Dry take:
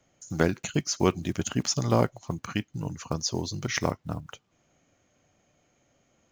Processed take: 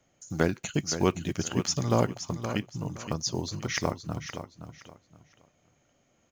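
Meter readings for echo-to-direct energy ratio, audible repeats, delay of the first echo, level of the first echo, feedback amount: -9.5 dB, 3, 0.52 s, -10.0 dB, 25%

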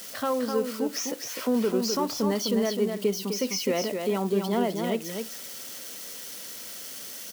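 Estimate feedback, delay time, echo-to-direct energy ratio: no steady repeat, 0.255 s, -5.5 dB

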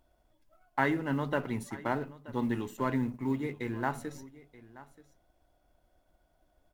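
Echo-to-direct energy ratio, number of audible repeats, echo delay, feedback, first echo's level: -19.0 dB, 1, 0.929 s, no steady repeat, -19.0 dB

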